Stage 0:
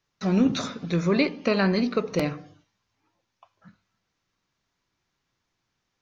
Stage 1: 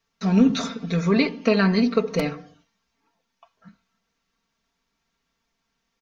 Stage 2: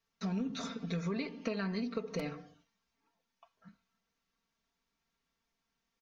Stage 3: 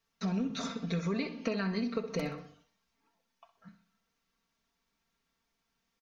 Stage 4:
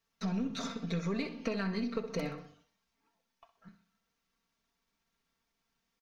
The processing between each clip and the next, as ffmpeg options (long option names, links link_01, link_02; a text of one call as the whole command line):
ffmpeg -i in.wav -af "aecho=1:1:4.4:0.81" out.wav
ffmpeg -i in.wav -af "acompressor=threshold=-24dB:ratio=8,volume=-8.5dB" out.wav
ffmpeg -i in.wav -af "aecho=1:1:63|126|189|252:0.224|0.0985|0.0433|0.0191,volume=3dB" out.wav
ffmpeg -i in.wav -af "aeval=exprs='if(lt(val(0),0),0.708*val(0),val(0))':channel_layout=same" out.wav